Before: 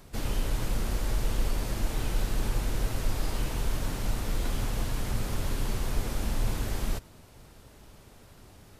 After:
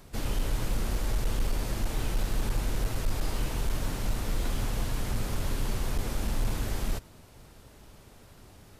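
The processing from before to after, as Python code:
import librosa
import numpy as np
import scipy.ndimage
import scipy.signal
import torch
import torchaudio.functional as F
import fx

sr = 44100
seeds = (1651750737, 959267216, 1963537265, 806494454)

y = np.clip(x, -10.0 ** (-21.0 / 20.0), 10.0 ** (-21.0 / 20.0))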